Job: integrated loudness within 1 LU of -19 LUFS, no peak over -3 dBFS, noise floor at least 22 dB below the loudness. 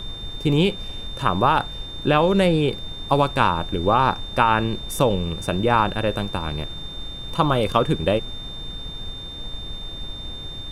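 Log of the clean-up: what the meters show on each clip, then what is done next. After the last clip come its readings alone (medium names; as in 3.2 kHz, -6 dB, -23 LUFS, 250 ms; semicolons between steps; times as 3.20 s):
steady tone 3.6 kHz; tone level -34 dBFS; noise floor -35 dBFS; noise floor target -44 dBFS; loudness -21.5 LUFS; peak level -2.5 dBFS; loudness target -19.0 LUFS
-> band-stop 3.6 kHz, Q 30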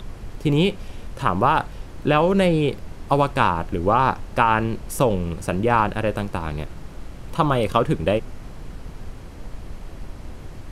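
steady tone not found; noise floor -38 dBFS; noise floor target -44 dBFS
-> noise print and reduce 6 dB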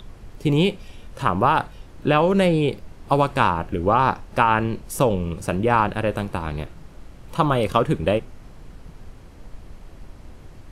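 noise floor -44 dBFS; loudness -21.5 LUFS; peak level -2.5 dBFS; loudness target -19.0 LUFS
-> trim +2.5 dB; peak limiter -3 dBFS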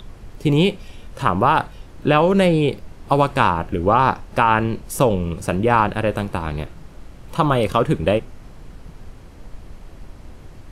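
loudness -19.0 LUFS; peak level -3.0 dBFS; noise floor -42 dBFS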